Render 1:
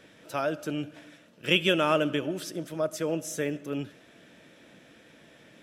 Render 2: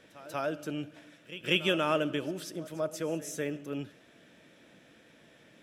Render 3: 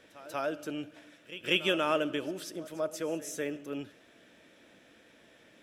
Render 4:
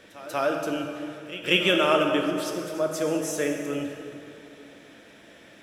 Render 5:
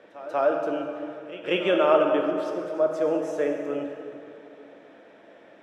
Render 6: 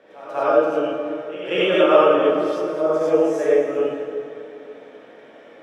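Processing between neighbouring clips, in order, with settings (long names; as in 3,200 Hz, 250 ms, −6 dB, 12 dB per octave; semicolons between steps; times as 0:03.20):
echo ahead of the sound 190 ms −16.5 dB; level −4 dB
parametric band 150 Hz −7.5 dB 0.81 octaves
in parallel at −1 dB: speech leveller within 3 dB 2 s; on the sum: dense smooth reverb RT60 2.6 s, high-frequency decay 0.65×, DRR 2.5 dB
resonant band-pass 640 Hz, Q 0.97; level +4 dB
reverb whose tail is shaped and stops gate 130 ms rising, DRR −7 dB; level −1.5 dB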